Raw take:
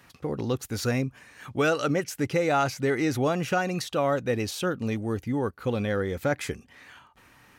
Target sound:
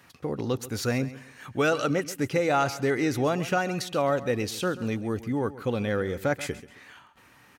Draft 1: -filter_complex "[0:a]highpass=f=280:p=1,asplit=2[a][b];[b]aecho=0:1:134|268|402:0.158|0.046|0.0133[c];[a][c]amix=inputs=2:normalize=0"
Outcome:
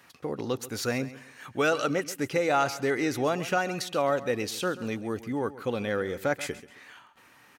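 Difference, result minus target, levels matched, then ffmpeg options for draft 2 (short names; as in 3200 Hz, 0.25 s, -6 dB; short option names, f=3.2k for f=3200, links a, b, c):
125 Hz band -4.5 dB
-filter_complex "[0:a]highpass=f=74:p=1,asplit=2[a][b];[b]aecho=0:1:134|268|402:0.158|0.046|0.0133[c];[a][c]amix=inputs=2:normalize=0"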